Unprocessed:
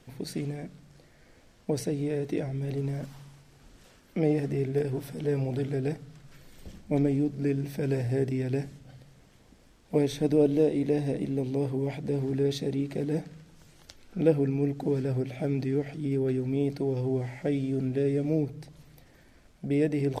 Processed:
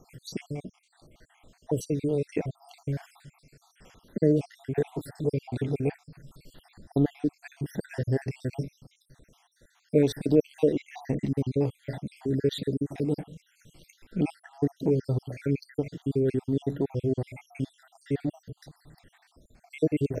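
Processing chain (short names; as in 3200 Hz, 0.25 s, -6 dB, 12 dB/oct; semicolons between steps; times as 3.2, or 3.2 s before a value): random spectral dropouts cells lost 66%; 10.78–11.57 comb 1 ms, depth 51%; gain +3.5 dB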